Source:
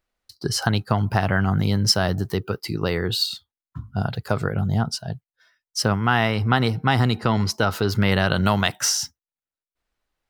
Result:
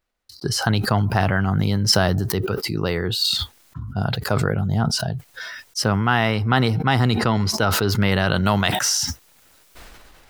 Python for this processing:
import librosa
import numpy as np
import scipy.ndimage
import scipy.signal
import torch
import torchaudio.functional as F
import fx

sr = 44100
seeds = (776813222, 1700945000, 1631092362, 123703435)

y = fx.sustainer(x, sr, db_per_s=23.0)